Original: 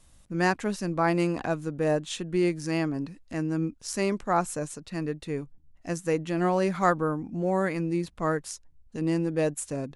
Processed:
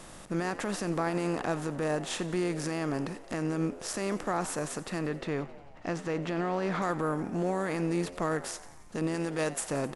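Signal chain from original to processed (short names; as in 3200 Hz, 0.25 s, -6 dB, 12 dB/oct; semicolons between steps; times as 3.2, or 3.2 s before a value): per-bin compression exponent 0.6; 4.99–6.82 LPF 4500 Hz 12 dB/oct; 9.14–9.61 tilt shelf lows -3.5 dB; limiter -17 dBFS, peak gain reduction 10 dB; frequency-shifting echo 89 ms, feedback 63%, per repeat +95 Hz, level -17 dB; gain -3.5 dB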